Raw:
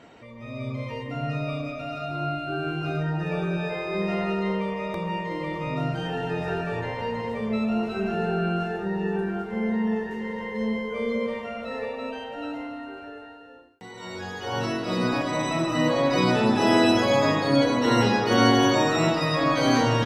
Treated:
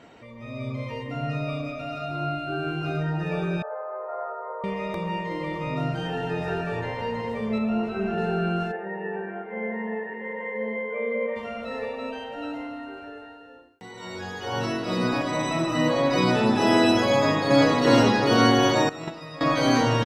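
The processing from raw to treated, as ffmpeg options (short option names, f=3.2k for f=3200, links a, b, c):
-filter_complex "[0:a]asettb=1/sr,asplit=3[a][b][c];[a]atrim=end=3.624[d];[b]atrim=start=3.62:end=4.64,asetpts=PTS-STARTPTS,afade=t=in:d=0.004:c=qsin,afade=t=out:st=1.016:d=0.004:c=qsin,asuperpass=centerf=860:order=12:qfactor=0.83[e];[c]atrim=start=4.636[f];[d][e]acrossfade=d=0.004:c1=hsin:c2=qsin[g];[g][f]acrossfade=d=0.004:c1=qsin:c2=hsin,asettb=1/sr,asplit=3[h][i][j];[h]atrim=end=7.584[k];[i]atrim=start=7.58:end=8.18,asetpts=PTS-STARTPTS,afade=t=in:d=0.004:c=qsin,afade=t=out:st=0.596:d=0.004:c=qsin,acrossover=split=3200[l][m];[m]acompressor=threshold=-57dB:ratio=4:attack=1:release=60[n];[l][n]amix=inputs=2:normalize=0[o];[j]atrim=start=8.176[p];[k][o]acrossfade=d=0.004:c1=hsin:c2=qsin[q];[q][p]acrossfade=d=0.004:c1=qsin:c2=hsin,asplit=3[r][s][t];[r]afade=t=out:st=8.71:d=0.02[u];[s]highpass=340,equalizer=f=370:t=q:w=4:g=-5,equalizer=f=540:t=q:w=4:g=6,equalizer=f=1.3k:t=q:w=4:g=-9,equalizer=f=2k:t=q:w=4:g=7,lowpass=f=2.2k:w=0.5412,lowpass=f=2.2k:w=1.3066,afade=t=in:st=8.71:d=0.02,afade=t=out:st=11.35:d=0.02[v];[t]afade=t=in:st=11.35:d=0.02[w];[u][v][w]amix=inputs=3:normalize=0,asplit=2[x][y];[y]afade=t=in:st=17.14:d=0.01,afade=t=out:st=17.74:d=0.01,aecho=0:1:360|720|1080|1440|1800|2160|2520|2880|3240:0.841395|0.504837|0.302902|0.181741|0.109045|0.0654269|0.0392561|0.0235537|0.0141322[z];[x][z]amix=inputs=2:normalize=0,asettb=1/sr,asplit=3[aa][ab][ac];[aa]atrim=end=18.894[ad];[ab]atrim=start=18.89:end=19.41,asetpts=PTS-STARTPTS,afade=t=in:d=0.004:c=qsin,afade=t=out:st=0.516:d=0.004:c=qsin,agate=range=-15dB:threshold=-19dB:ratio=16:release=100:detection=peak[ae];[ac]atrim=start=19.406[af];[ad][ae]acrossfade=d=0.004:c1=hsin:c2=qsin[ag];[ag][af]acrossfade=d=0.004:c1=qsin:c2=hsin"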